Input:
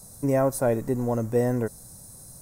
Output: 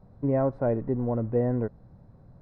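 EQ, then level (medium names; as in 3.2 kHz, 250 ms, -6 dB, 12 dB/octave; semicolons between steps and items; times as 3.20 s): distance through air 410 m; tape spacing loss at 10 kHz 30 dB; 0.0 dB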